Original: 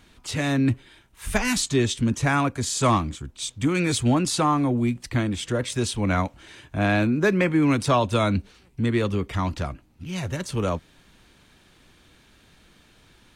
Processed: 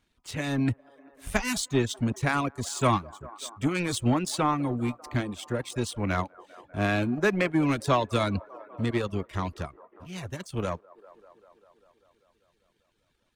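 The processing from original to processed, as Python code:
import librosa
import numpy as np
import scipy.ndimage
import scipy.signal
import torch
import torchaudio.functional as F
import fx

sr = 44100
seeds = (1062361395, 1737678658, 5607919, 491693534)

y = fx.power_curve(x, sr, exponent=1.4)
y = fx.echo_wet_bandpass(y, sr, ms=197, feedback_pct=73, hz=740.0, wet_db=-16.0)
y = fx.dereverb_blind(y, sr, rt60_s=0.54)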